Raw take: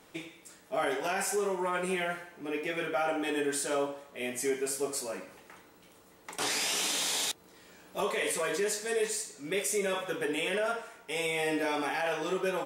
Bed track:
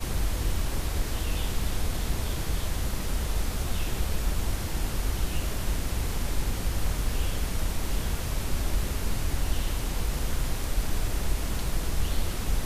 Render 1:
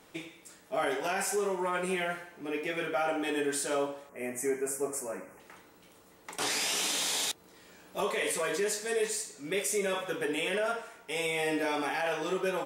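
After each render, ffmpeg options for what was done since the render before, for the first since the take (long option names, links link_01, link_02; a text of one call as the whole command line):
ffmpeg -i in.wav -filter_complex "[0:a]asettb=1/sr,asplit=3[link_01][link_02][link_03];[link_01]atrim=end=4.094[link_04];[link_02]atrim=start=4.09:end=5.4,asetpts=PTS-STARTPTS,afade=type=in:duration=0.004:curve=qsin,afade=type=out:start_time=1.306:duration=0.004:curve=qsin,asuperstop=centerf=3800:order=4:qfactor=0.87[link_05];[link_03]atrim=start=5.396[link_06];[link_04][link_05]acrossfade=duration=0.004:curve1=hsin:curve2=qsin[link_07];[link_07][link_06]acrossfade=duration=0.004:curve1=qsin:curve2=hsin" out.wav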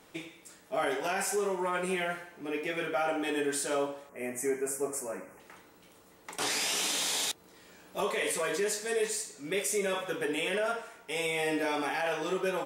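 ffmpeg -i in.wav -af anull out.wav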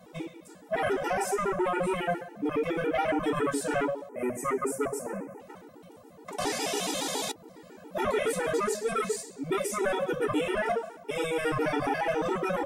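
ffmpeg -i in.wav -filter_complex "[0:a]acrossover=split=110|930[link_01][link_02][link_03];[link_02]aeval=exprs='0.0794*sin(PI/2*3.16*val(0)/0.0794)':channel_layout=same[link_04];[link_01][link_04][link_03]amix=inputs=3:normalize=0,afftfilt=real='re*gt(sin(2*PI*7.2*pts/sr)*(1-2*mod(floor(b*sr/1024/250),2)),0)':imag='im*gt(sin(2*PI*7.2*pts/sr)*(1-2*mod(floor(b*sr/1024/250),2)),0)':win_size=1024:overlap=0.75" out.wav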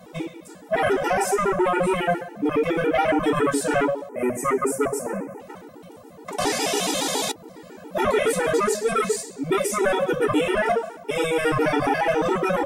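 ffmpeg -i in.wav -af "volume=7dB" out.wav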